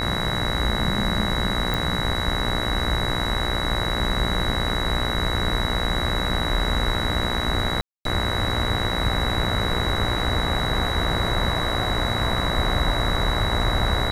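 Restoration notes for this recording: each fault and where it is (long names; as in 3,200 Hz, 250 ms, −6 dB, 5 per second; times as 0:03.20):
mains buzz 60 Hz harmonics 36 −28 dBFS
whistle 3,900 Hz −28 dBFS
0:01.74: click
0:07.81–0:08.05: drop-out 242 ms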